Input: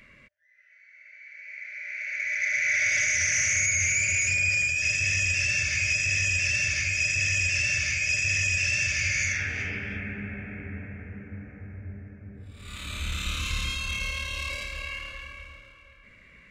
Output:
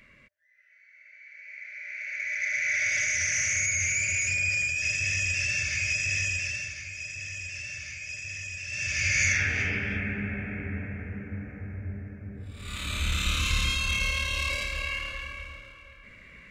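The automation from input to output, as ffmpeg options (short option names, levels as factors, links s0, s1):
-af "volume=4.47,afade=t=out:st=6.2:d=0.55:silence=0.334965,afade=t=in:st=8.67:d=0.18:silence=0.421697,afade=t=in:st=8.85:d=0.42:silence=0.398107"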